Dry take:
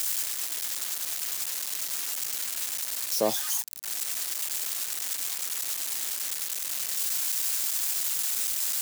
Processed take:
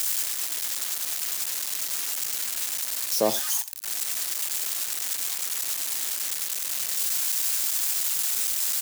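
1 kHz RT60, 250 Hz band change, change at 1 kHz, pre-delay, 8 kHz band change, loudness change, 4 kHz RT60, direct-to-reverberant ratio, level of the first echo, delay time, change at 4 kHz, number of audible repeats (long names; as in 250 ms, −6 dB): no reverb audible, +2.5 dB, +2.5 dB, no reverb audible, +2.5 dB, +2.5 dB, no reverb audible, no reverb audible, −17.5 dB, 89 ms, +2.5 dB, 1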